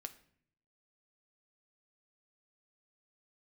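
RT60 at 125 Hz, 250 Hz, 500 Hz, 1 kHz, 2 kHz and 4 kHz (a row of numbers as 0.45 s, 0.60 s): 1.0 s, 0.85 s, 0.65 s, 0.55 s, 0.60 s, 0.45 s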